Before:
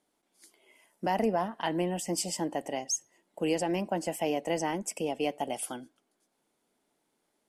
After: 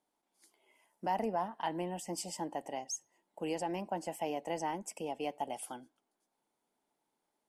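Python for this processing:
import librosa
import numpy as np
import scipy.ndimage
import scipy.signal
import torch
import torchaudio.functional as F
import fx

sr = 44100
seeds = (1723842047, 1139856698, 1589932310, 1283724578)

y = fx.peak_eq(x, sr, hz=880.0, db=7.5, octaves=0.58)
y = y * 10.0 ** (-8.5 / 20.0)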